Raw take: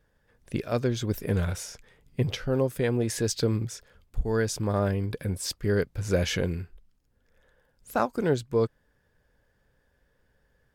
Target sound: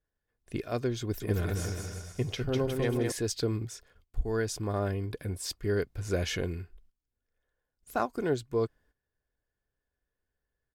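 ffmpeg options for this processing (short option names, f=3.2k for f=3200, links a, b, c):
-filter_complex "[0:a]agate=range=-14dB:threshold=-56dB:ratio=16:detection=peak,aecho=1:1:2.8:0.34,asettb=1/sr,asplit=3[a][b][c];[a]atrim=end=1.004[d];[b]atrim=start=1:end=3.12,asetpts=PTS-STARTPTS,afade=t=in:d=0.004:c=qsin,afade=t=out:st=2.116:d=0.004:c=qsin,aecho=1:1:200|360|488|590.4|672.3:0.631|0.398|0.251|0.158|0.1,atrim=end_sample=93492[e];[c]atrim=start=3.116[f];[d][e]acrossfade=d=0.004:c1=hsin:c2=qsin[g];[g][f]acrossfade=d=0.004:c1=qsin:c2=hsin,volume=-4.5dB"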